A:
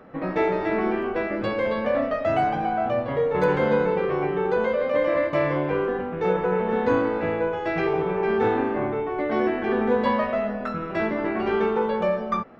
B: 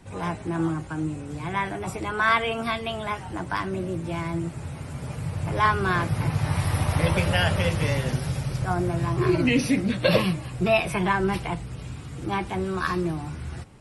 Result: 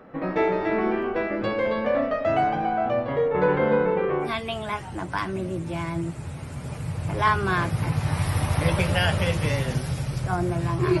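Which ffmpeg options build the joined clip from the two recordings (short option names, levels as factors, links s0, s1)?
-filter_complex "[0:a]asettb=1/sr,asplit=3[s0][s1][s2];[s0]atrim=end=3.284[s3];[s1]atrim=start=3.28:end=4.36,asetpts=PTS-STARTPTS,afade=t=in:d=0.004:c=qsin,afade=t=out:st=1.076:d=0.004:c=qsin,lowpass=3000[s4];[s2]atrim=start=4.356[s5];[s3][s4]acrossfade=d=0.004:c1=hsin:c2=qsin[s6];[s6][s5]acrossfade=d=0.004:c1=qsin:c2=hsin,apad=whole_dur=11,atrim=end=11,atrim=end=4.36,asetpts=PTS-STARTPTS[s7];[1:a]atrim=start=2.56:end=9.38,asetpts=PTS-STARTPTS[s8];[s7][s8]acrossfade=d=0.18:c1=tri:c2=tri"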